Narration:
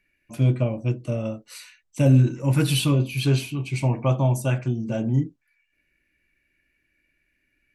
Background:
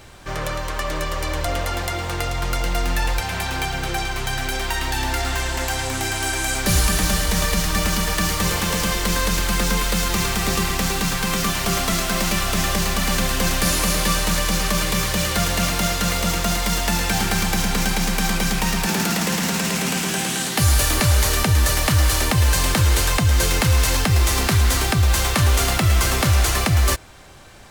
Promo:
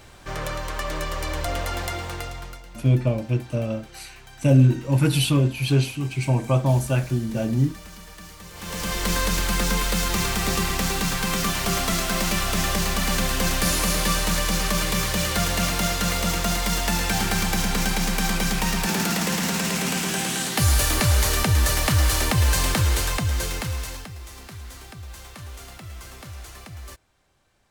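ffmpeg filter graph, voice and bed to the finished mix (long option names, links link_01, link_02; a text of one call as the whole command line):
ffmpeg -i stem1.wav -i stem2.wav -filter_complex "[0:a]adelay=2450,volume=1dB[link_01];[1:a]volume=15.5dB,afade=type=out:start_time=1.89:duration=0.73:silence=0.125893,afade=type=in:start_time=8.53:duration=0.56:silence=0.112202,afade=type=out:start_time=22.61:duration=1.53:silence=0.105925[link_02];[link_01][link_02]amix=inputs=2:normalize=0" out.wav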